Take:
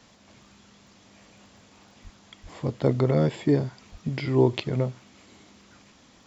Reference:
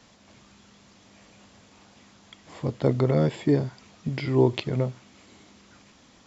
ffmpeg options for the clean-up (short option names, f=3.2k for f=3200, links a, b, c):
-filter_complex "[0:a]adeclick=t=4,asplit=3[a][b][c];[a]afade=t=out:st=2.03:d=0.02[d];[b]highpass=f=140:w=0.5412,highpass=f=140:w=1.3066,afade=t=in:st=2.03:d=0.02,afade=t=out:st=2.15:d=0.02[e];[c]afade=t=in:st=2.15:d=0.02[f];[d][e][f]amix=inputs=3:normalize=0,asplit=3[g][h][i];[g]afade=t=out:st=2.42:d=0.02[j];[h]highpass=f=140:w=0.5412,highpass=f=140:w=1.3066,afade=t=in:st=2.42:d=0.02,afade=t=out:st=2.54:d=0.02[k];[i]afade=t=in:st=2.54:d=0.02[l];[j][k][l]amix=inputs=3:normalize=0,asplit=3[m][n][o];[m]afade=t=out:st=3.91:d=0.02[p];[n]highpass=f=140:w=0.5412,highpass=f=140:w=1.3066,afade=t=in:st=3.91:d=0.02,afade=t=out:st=4.03:d=0.02[q];[o]afade=t=in:st=4.03:d=0.02[r];[p][q][r]amix=inputs=3:normalize=0"